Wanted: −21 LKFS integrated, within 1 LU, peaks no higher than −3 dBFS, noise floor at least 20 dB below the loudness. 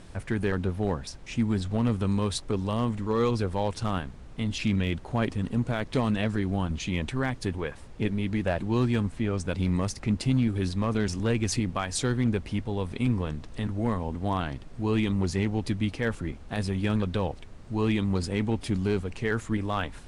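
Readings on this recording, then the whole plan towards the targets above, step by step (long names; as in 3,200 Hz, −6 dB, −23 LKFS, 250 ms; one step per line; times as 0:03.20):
share of clipped samples 0.3%; peaks flattened at −16.5 dBFS; background noise floor −45 dBFS; target noise floor −49 dBFS; integrated loudness −28.5 LKFS; sample peak −16.5 dBFS; target loudness −21.0 LKFS
→ clipped peaks rebuilt −16.5 dBFS
noise reduction from a noise print 6 dB
level +7.5 dB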